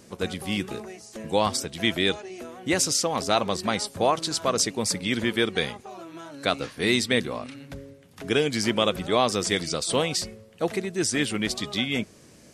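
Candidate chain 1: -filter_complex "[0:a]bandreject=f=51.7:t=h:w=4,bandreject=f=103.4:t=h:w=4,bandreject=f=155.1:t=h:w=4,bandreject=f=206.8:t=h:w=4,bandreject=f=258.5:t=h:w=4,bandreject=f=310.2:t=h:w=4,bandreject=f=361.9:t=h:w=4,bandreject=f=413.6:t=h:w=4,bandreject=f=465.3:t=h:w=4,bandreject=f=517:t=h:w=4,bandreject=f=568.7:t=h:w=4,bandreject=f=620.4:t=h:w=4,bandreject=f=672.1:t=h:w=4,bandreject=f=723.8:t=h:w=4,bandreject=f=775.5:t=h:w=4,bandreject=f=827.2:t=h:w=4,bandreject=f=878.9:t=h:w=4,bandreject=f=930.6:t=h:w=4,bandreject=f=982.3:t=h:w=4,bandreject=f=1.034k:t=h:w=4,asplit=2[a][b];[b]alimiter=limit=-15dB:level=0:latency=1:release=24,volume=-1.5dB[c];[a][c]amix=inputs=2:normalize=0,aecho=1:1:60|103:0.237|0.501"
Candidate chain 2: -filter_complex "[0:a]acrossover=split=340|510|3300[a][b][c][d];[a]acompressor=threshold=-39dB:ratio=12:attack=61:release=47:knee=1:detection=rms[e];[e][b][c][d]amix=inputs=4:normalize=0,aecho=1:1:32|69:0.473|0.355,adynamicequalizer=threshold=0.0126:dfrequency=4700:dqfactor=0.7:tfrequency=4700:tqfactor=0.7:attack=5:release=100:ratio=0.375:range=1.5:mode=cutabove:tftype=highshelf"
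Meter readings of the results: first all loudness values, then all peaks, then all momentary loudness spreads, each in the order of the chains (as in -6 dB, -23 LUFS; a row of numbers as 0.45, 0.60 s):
-20.5, -25.5 LUFS; -2.0, -6.5 dBFS; 14, 14 LU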